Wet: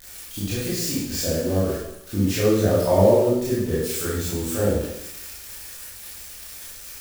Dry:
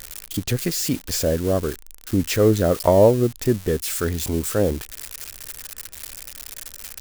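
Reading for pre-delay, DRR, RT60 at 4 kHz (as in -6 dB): 18 ms, -9.0 dB, 0.80 s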